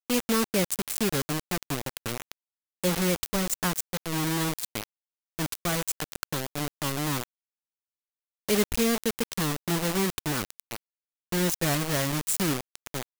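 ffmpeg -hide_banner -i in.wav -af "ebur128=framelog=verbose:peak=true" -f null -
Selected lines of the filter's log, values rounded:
Integrated loudness:
  I:         -28.2 LUFS
  Threshold: -38.6 LUFS
Loudness range:
  LRA:         3.8 LU
  Threshold: -49.4 LUFS
  LRA low:   -31.9 LUFS
  LRA high:  -28.1 LUFS
True peak:
  Peak:      -10.7 dBFS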